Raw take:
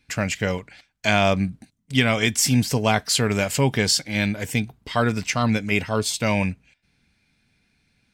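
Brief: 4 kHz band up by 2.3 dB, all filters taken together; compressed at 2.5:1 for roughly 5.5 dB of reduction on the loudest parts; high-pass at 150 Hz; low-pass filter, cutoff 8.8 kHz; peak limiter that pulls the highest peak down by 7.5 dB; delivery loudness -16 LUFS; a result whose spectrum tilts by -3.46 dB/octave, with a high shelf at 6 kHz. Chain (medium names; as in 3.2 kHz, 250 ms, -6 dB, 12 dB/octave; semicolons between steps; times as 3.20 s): high-pass 150 Hz; low-pass 8.8 kHz; peaking EQ 4 kHz +4.5 dB; treble shelf 6 kHz -3.5 dB; compression 2.5:1, threshold -21 dBFS; trim +11 dB; peak limiter -2.5 dBFS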